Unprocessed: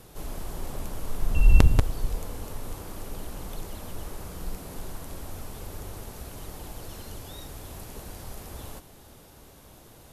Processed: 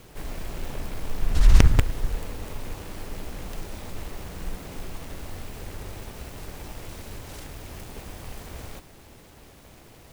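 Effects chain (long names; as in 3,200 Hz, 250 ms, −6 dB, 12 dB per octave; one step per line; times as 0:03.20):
short delay modulated by noise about 1,400 Hz, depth 0.13 ms
level +1.5 dB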